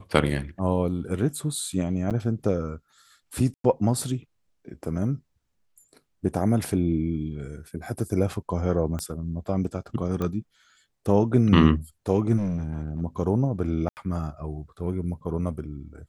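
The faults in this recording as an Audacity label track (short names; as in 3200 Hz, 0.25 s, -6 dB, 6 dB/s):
2.100000	2.110000	gap 7.6 ms
3.540000	3.640000	gap 0.103 s
8.990000	8.990000	pop -19 dBFS
10.220000	10.220000	pop -17 dBFS
12.370000	13.020000	clipped -23.5 dBFS
13.890000	13.970000	gap 79 ms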